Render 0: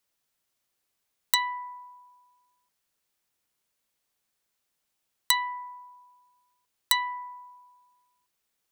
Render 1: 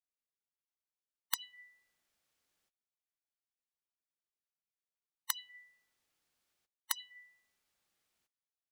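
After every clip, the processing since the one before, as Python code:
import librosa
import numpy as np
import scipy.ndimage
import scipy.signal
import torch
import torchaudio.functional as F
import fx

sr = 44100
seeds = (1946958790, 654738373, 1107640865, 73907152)

y = fx.spec_gate(x, sr, threshold_db=-15, keep='weak')
y = fx.high_shelf(y, sr, hz=8800.0, db=-7.5)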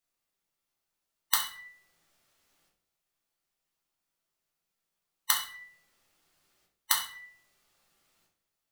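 y = fx.echo_feedback(x, sr, ms=67, feedback_pct=24, wet_db=-15.0)
y = fx.room_shoebox(y, sr, seeds[0], volume_m3=54.0, walls='mixed', distance_m=0.73)
y = F.gain(torch.from_numpy(y), 7.5).numpy()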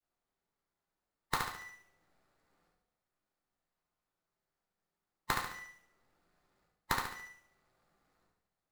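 y = scipy.ndimage.median_filter(x, 15, mode='constant')
y = fx.echo_feedback(y, sr, ms=71, feedback_pct=43, wet_db=-5)
y = F.gain(torch.from_numpy(y), 1.0).numpy()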